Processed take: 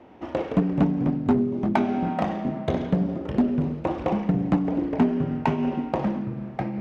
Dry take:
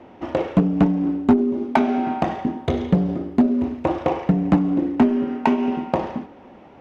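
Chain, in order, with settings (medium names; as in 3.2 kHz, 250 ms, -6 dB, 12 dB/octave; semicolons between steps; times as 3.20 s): ever faster or slower copies 101 ms, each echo -3 st, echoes 3, each echo -6 dB; trim -5 dB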